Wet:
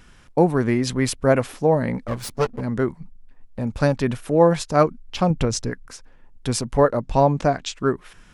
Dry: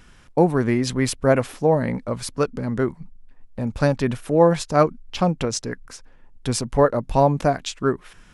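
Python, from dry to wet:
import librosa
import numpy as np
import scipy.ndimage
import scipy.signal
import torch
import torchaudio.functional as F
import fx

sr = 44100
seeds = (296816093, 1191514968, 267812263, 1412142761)

y = fx.lower_of_two(x, sr, delay_ms=8.9, at=(2.07, 2.61))
y = fx.low_shelf(y, sr, hz=140.0, db=11.0, at=(5.3, 5.7))
y = fx.lowpass(y, sr, hz=8300.0, slope=24, at=(7.01, 7.76))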